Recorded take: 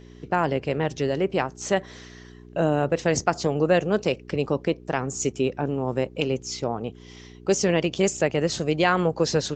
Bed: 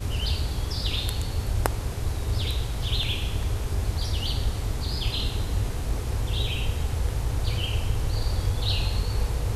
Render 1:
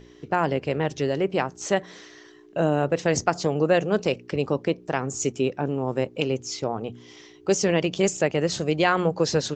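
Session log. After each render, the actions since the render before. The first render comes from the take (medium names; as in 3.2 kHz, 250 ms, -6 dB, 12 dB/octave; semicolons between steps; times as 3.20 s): de-hum 60 Hz, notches 4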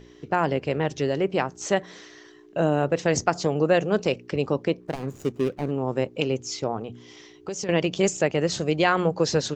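4.80–5.71 s: median filter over 41 samples; 6.80–7.69 s: compression, threshold -28 dBFS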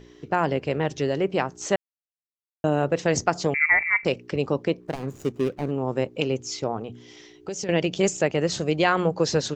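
1.76–2.64 s: mute; 3.54–4.05 s: frequency inversion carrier 2.5 kHz; 6.92–8.00 s: peaking EQ 1.1 kHz -7 dB 0.31 oct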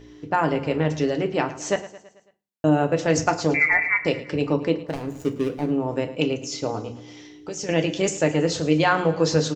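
feedback delay 110 ms, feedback 54%, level -16 dB; FDN reverb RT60 0.31 s, low-frequency decay 1.45×, high-frequency decay 0.9×, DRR 5.5 dB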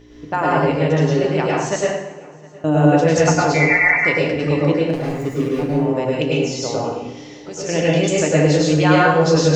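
filtered feedback delay 712 ms, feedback 49%, low-pass 4.2 kHz, level -22.5 dB; plate-style reverb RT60 0.71 s, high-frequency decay 0.8×, pre-delay 90 ms, DRR -4.5 dB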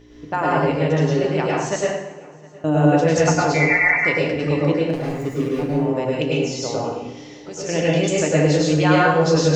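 trim -2 dB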